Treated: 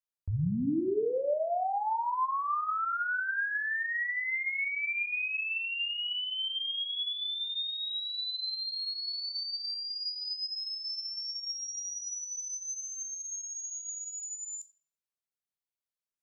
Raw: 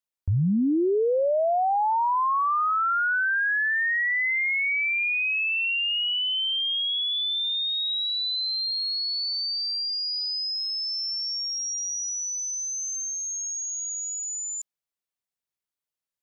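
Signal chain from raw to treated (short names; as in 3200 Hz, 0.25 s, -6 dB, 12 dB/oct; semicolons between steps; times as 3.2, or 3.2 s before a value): shoebox room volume 89 m³, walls mixed, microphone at 0.38 m; gain -8.5 dB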